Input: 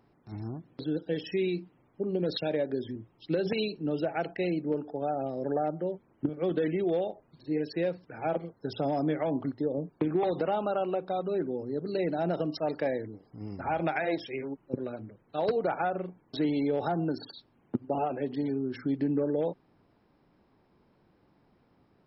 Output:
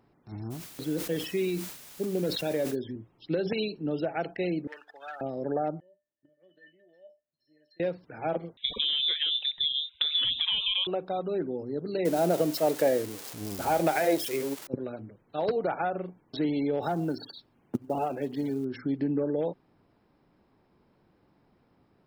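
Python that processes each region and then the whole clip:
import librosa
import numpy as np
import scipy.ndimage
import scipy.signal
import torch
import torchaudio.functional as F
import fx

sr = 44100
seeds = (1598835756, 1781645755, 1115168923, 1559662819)

y = fx.dmg_noise_colour(x, sr, seeds[0], colour='white', level_db=-49.0, at=(0.5, 2.74), fade=0.02)
y = fx.sustainer(y, sr, db_per_s=81.0, at=(0.5, 2.74), fade=0.02)
y = fx.chain(y, sr, fx.highpass_res(hz=1800.0, q=10.0),
    fx.leveller(passes=1), at=(4.67, 5.21))
y = fx.chain(y, sr, fx.band_shelf(hz=570.0, db=-9.5, octaves=1.0),
    fx.comb_fb(f0_hz=600.0, decay_s=0.24, harmonics='odd', damping=0.0, mix_pct=100), at=(5.8, 7.8))
y = fx.chain(y, sr, fx.high_shelf(hz=3000.0, db=7.5),
    fx.freq_invert(carrier_hz=3800),
    fx.band_squash(depth_pct=70), at=(8.57, 10.87))
y = fx.chain(y, sr, fx.crossing_spikes(level_db=-26.5),
    fx.peak_eq(hz=500.0, db=6.5, octaves=1.6), at=(12.05, 14.67))
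y = fx.chain(y, sr, fx.high_shelf(hz=3400.0, db=2.5),
    fx.quant_float(bits=4), at=(16.82, 18.65))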